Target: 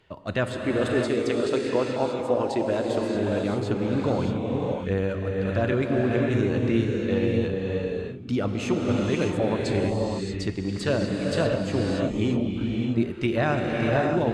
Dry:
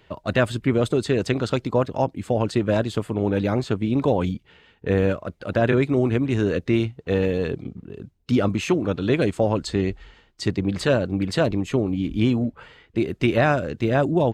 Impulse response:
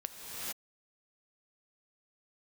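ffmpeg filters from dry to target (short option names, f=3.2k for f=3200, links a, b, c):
-filter_complex "[0:a]asettb=1/sr,asplit=3[a][b][c];[a]atrim=end=0.504[d];[b]atrim=start=0.5:end=3.15,asetpts=PTS-STARTPTS,afade=t=in:d=0.004:c=qsin,afade=t=out:st=2.646:d=0.004:c=qsin,lowshelf=f=220:t=q:w=1.5:g=-7.5[e];[c]atrim=start=3.146[f];[d][e]acrossfade=d=0.004:c1=hsin:c2=qsin[g];[g][f]acrossfade=d=0.004:c1=qsin:c2=hsin[h];[1:a]atrim=start_sample=2205,afade=t=out:st=0.37:d=0.01,atrim=end_sample=16758,asetrate=22050,aresample=44100[i];[h][i]afir=irnorm=-1:irlink=0,volume=-6.5dB"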